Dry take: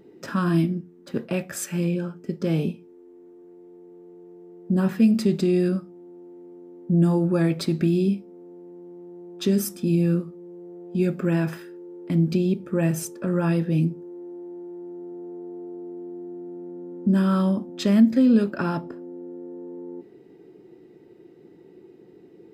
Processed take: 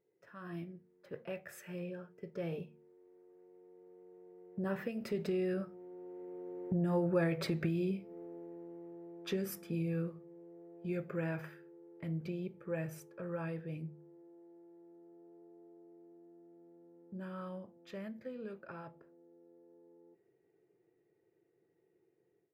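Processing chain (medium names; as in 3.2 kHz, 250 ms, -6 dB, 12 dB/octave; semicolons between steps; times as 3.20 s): Doppler pass-by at 7.25 s, 9 m/s, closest 3.4 m; compression 6:1, threshold -36 dBFS, peak gain reduction 18 dB; de-hum 76.38 Hz, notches 3; level rider gain up to 11.5 dB; ten-band graphic EQ 125 Hz +4 dB, 250 Hz -12 dB, 500 Hz +8 dB, 2 kHz +7 dB, 4 kHz -5 dB, 8 kHz -8 dB; trim -4.5 dB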